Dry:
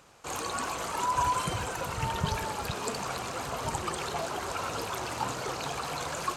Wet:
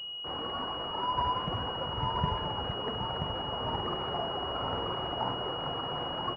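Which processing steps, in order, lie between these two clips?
3.55–5.35 s: doubling 48 ms -4 dB; delay 980 ms -5 dB; class-D stage that switches slowly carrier 2.9 kHz; trim -1.5 dB

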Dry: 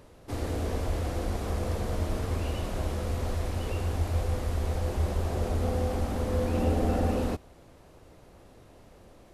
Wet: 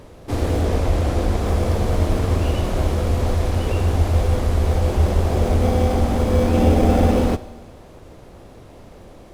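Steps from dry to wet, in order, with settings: in parallel at -9 dB: sample-rate reducer 2.8 kHz; on the sum: treble shelf 11 kHz -5 dB; Schroeder reverb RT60 1.4 s, combs from 30 ms, DRR 15.5 dB; 0.61–1.46 s: loudspeaker Doppler distortion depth 0.27 ms; trim +8.5 dB

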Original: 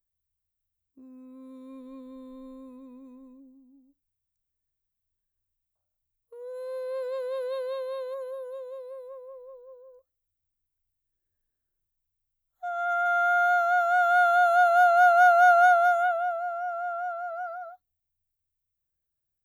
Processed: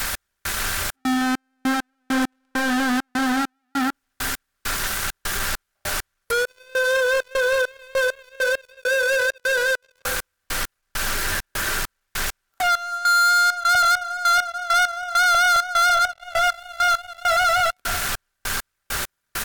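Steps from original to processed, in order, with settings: jump at every zero crossing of -26.5 dBFS; bass shelf 150 Hz -6 dB; comb 5.1 ms, depth 35%; delay 234 ms -18 dB; gate -22 dBFS, range -12 dB; in parallel at +1 dB: peak limiter -18 dBFS, peak gain reduction 7.5 dB; on the sum: low-pass that closes with the level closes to 2.2 kHz, closed at -12 dBFS; peaking EQ 1.5 kHz +11 dB 0.6 oct; compression 12:1, threshold -21 dBFS, peak gain reduction 16 dB; spring tank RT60 2.7 s, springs 50 ms, chirp 45 ms, DRR 12.5 dB; trance gate "x..xxx.xx..x.." 100 bpm -24 dB; waveshaping leveller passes 5

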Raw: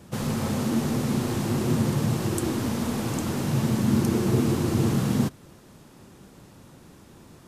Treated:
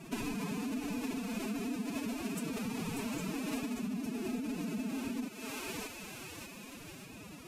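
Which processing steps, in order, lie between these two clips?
peaking EQ 2.5 kHz +12.5 dB 0.23 oct; thinning echo 590 ms, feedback 55%, high-pass 990 Hz, level -6.5 dB; compression 12:1, threshold -33 dBFS, peak gain reduction 16.5 dB; formant-preserving pitch shift +11.5 st

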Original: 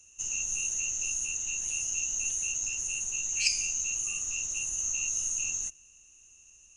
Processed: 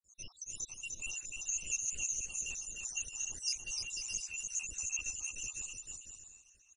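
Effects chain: random holes in the spectrogram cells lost 81%; volume shaper 136 bpm, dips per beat 1, -19 dB, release 192 ms; on a send: bouncing-ball echo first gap 300 ms, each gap 0.65×, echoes 5

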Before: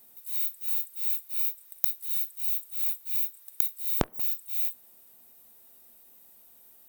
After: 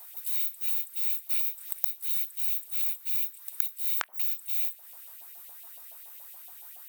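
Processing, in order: compression 2.5:1, threshold -38 dBFS, peak gain reduction 13.5 dB; LFO high-pass saw up 7.1 Hz 650–3100 Hz; 1.29–1.73 s: three bands compressed up and down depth 100%; trim +8.5 dB

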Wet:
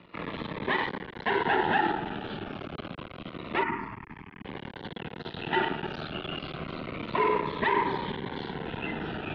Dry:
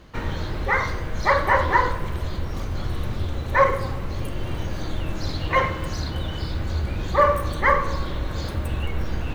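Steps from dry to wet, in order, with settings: peak limiter -14.5 dBFS, peak gain reduction 9.5 dB; half-wave rectifier; 3.63–4.45 s: static phaser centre 1.7 kHz, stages 4; mistuned SSB -160 Hz 310–3600 Hz; Shepard-style phaser falling 0.28 Hz; trim +5 dB

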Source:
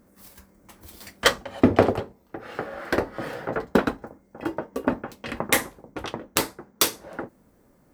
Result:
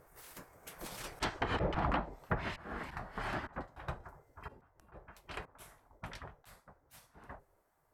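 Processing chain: Doppler pass-by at 1.67 s, 10 m/s, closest 5.2 m; hum notches 50/100/150/200/250/300/350/400/450 Hz; slow attack 456 ms; spectral gate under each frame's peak -10 dB weak; peaking EQ 5.2 kHz -8 dB 2.5 oct; low-pass that closes with the level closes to 2 kHz, closed at -42.5 dBFS; bass shelf 92 Hz +10.5 dB; trim +15 dB

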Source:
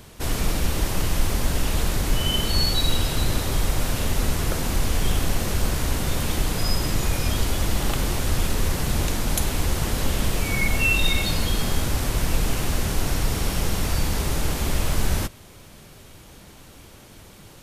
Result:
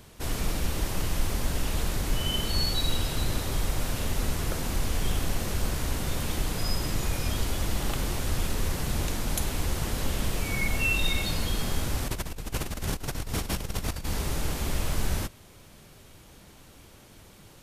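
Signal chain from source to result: 12.08–14.08 s: compressor with a negative ratio -25 dBFS, ratio -0.5; trim -5.5 dB

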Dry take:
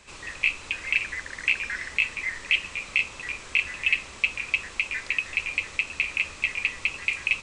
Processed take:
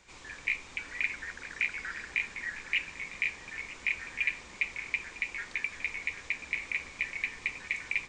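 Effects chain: repeats whose band climbs or falls 146 ms, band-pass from 220 Hz, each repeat 0.7 oct, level -1 dB; speed mistake 48 kHz file played as 44.1 kHz; trim -7.5 dB

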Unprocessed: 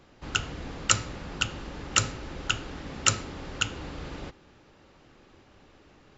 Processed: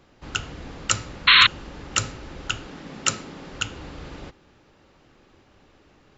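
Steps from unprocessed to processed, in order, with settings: 1.27–1.47 s: painted sound noise 1–4.3 kHz -13 dBFS; 2.66–3.53 s: resonant low shelf 120 Hz -9 dB, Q 1.5

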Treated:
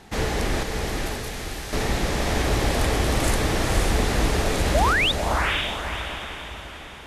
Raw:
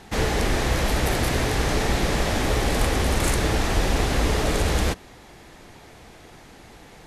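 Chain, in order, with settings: 0.63–1.73 s: amplifier tone stack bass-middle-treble 5-5-5; 4.74–5.12 s: painted sound rise 540–3900 Hz -19 dBFS; echo that smears into a reverb 520 ms, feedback 47%, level -3 dB; trim -2 dB

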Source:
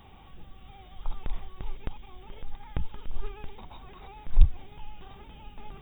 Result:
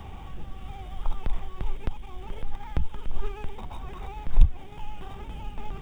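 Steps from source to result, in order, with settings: median filter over 9 samples; three bands compressed up and down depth 40%; trim +5.5 dB

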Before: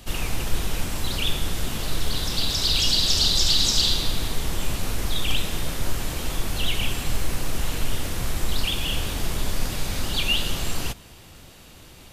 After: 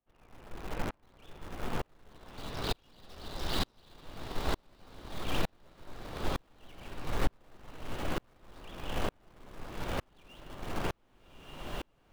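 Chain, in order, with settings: low-pass 1.3 kHz 12 dB/octave; bass shelf 220 Hz -11.5 dB; in parallel at -9 dB: bit crusher 5-bit; on the sum: echo that smears into a reverb 1223 ms, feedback 65%, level -7 dB; sawtooth tremolo in dB swelling 1.1 Hz, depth 40 dB; trim +2.5 dB

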